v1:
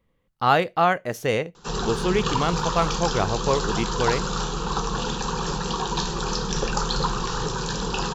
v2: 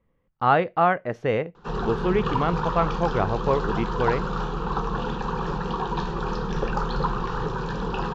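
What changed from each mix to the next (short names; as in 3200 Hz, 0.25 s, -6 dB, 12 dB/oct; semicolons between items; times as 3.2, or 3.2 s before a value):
master: add LPF 2000 Hz 12 dB/oct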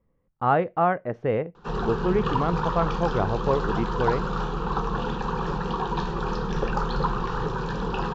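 speech: add LPF 1100 Hz 6 dB/oct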